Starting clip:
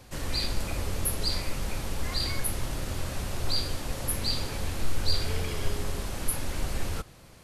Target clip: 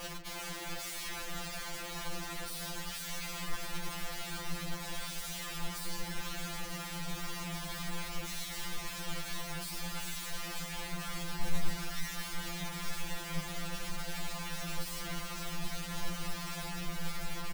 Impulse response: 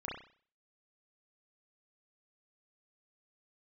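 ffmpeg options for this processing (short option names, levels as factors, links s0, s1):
-filter_complex "[0:a]asetrate=18698,aresample=44100,asplit=2[s0][s1];[s1]aecho=0:1:146:0.0841[s2];[s0][s2]amix=inputs=2:normalize=0,alimiter=limit=0.075:level=0:latency=1:release=48,areverse,acompressor=threshold=0.00708:ratio=8,areverse,highshelf=f=3300:g=-11.5,acontrast=63,aeval=exprs='(mod(158*val(0)+1,2)-1)/158':c=same,asubboost=boost=7:cutoff=120,afftfilt=real='re*2.83*eq(mod(b,8),0)':imag='im*2.83*eq(mod(b,8),0)':win_size=2048:overlap=0.75,volume=2.99"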